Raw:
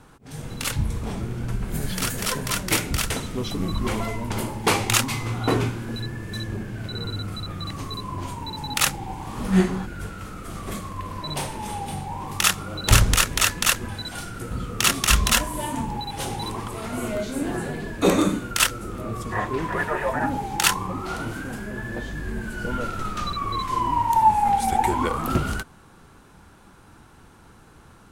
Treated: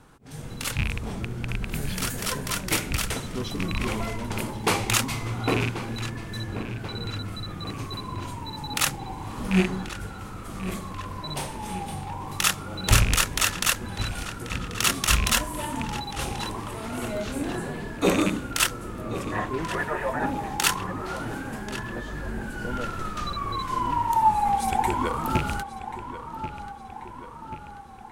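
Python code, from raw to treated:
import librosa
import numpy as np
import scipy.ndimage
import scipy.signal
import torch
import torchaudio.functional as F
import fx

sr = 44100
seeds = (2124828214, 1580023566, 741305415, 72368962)

y = fx.rattle_buzz(x, sr, strikes_db=-22.0, level_db=-13.0)
y = fx.echo_filtered(y, sr, ms=1086, feedback_pct=61, hz=4300.0, wet_db=-12)
y = F.gain(torch.from_numpy(y), -3.0).numpy()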